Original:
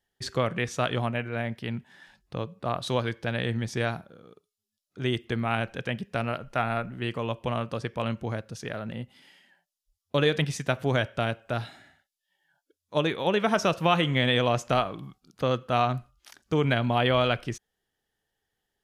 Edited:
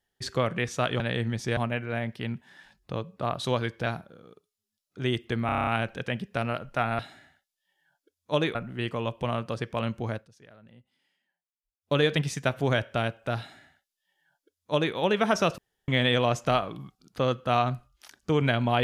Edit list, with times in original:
0:03.29–0:03.86: move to 0:01.00
0:05.46: stutter 0.03 s, 8 plays
0:08.39–0:10.16: duck −18.5 dB, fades 0.12 s
0:11.62–0:13.18: duplicate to 0:06.78
0:13.81–0:14.11: fill with room tone

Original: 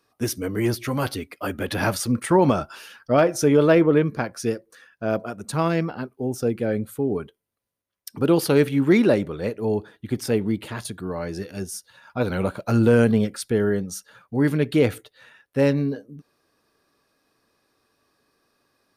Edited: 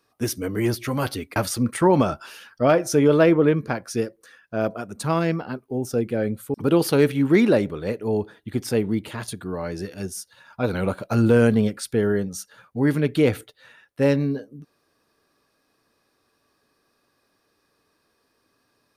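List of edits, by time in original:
0:01.36–0:01.85: remove
0:07.03–0:08.11: remove

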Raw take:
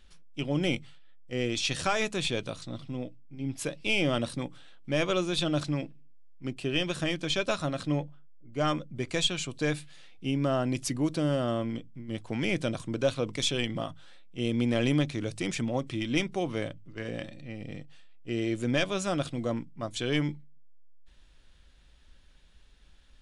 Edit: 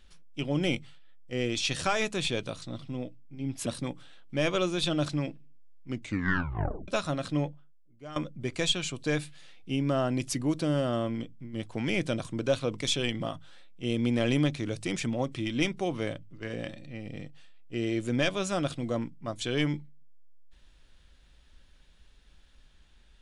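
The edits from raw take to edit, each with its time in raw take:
0:03.66–0:04.21: remove
0:06.45: tape stop 0.98 s
0:07.99–0:08.71: fade out quadratic, to −16 dB

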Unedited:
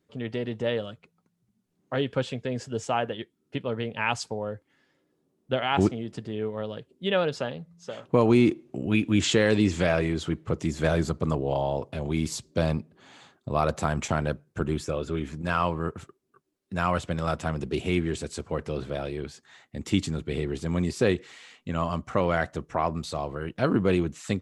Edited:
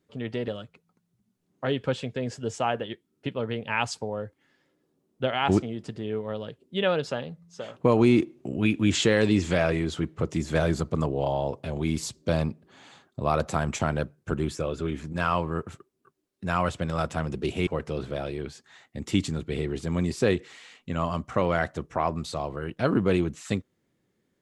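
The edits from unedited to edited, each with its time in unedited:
0:00.48–0:00.77: remove
0:17.96–0:18.46: remove

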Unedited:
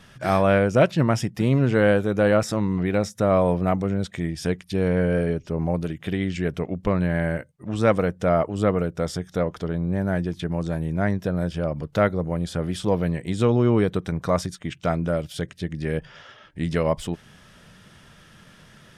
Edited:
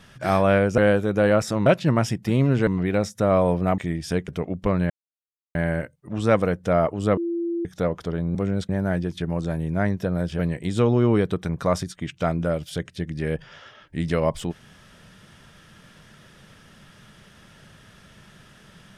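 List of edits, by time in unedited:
0:01.79–0:02.67: move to 0:00.78
0:03.78–0:04.12: move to 0:09.91
0:04.62–0:06.49: remove
0:07.11: splice in silence 0.65 s
0:08.73–0:09.21: beep over 340 Hz −23 dBFS
0:11.61–0:13.02: remove

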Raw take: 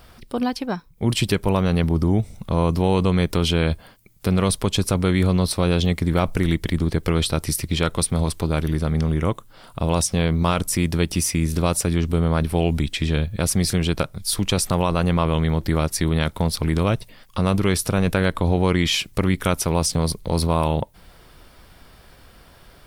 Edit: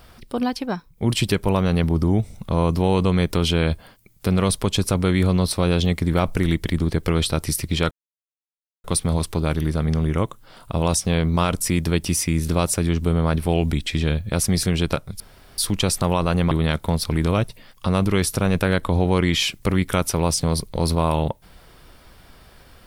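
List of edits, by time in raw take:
0:07.91: splice in silence 0.93 s
0:14.27: splice in room tone 0.38 s
0:15.20–0:16.03: remove

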